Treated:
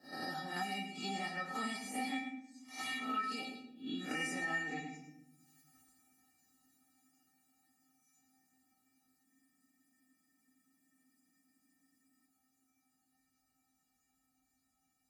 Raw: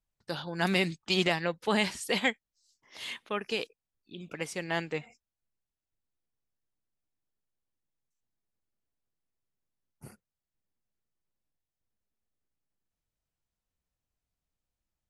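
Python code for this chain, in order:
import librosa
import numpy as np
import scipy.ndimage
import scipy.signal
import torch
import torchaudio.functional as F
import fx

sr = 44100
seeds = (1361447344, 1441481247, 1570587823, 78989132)

p1 = fx.spec_swells(x, sr, rise_s=0.41)
p2 = fx.doppler_pass(p1, sr, speed_mps=19, closest_m=18.0, pass_at_s=4.34)
p3 = scipy.signal.sosfilt(scipy.signal.butter(2, 54.0, 'highpass', fs=sr, output='sos'), p2)
p4 = fx.peak_eq(p3, sr, hz=3400.0, db=-11.5, octaves=0.53)
p5 = fx.level_steps(p4, sr, step_db=14)
p6 = p4 + (p5 * librosa.db_to_amplitude(2.0))
p7 = fx.comb_fb(p6, sr, f0_hz=260.0, decay_s=0.24, harmonics='odd', damping=0.0, mix_pct=100)
p8 = p7 + fx.echo_single(p7, sr, ms=107, db=-13.0, dry=0)
p9 = fx.room_shoebox(p8, sr, seeds[0], volume_m3=79.0, walls='mixed', distance_m=0.5)
p10 = fx.spec_freeze(p9, sr, seeds[1], at_s=9.26, hold_s=3.01)
p11 = fx.band_squash(p10, sr, depth_pct=100)
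y = p11 * librosa.db_to_amplitude(10.0)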